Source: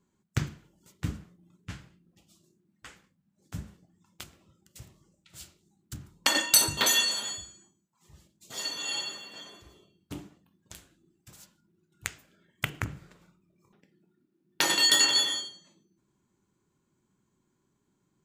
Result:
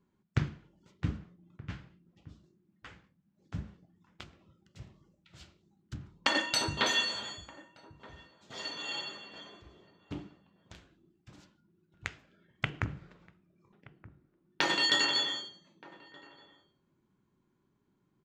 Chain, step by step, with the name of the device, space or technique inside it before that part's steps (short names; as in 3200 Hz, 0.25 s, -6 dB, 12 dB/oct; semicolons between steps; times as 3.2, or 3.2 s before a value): shout across a valley (air absorption 180 m; outdoor echo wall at 210 m, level -19 dB)